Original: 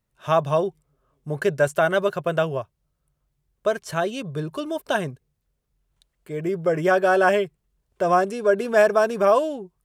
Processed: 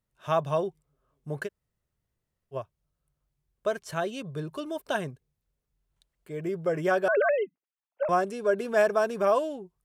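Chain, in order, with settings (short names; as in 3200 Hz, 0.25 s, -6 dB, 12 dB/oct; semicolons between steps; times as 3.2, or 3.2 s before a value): 1.46–2.54 room tone, crossfade 0.06 s; 7.08–8.09 sine-wave speech; gain -6 dB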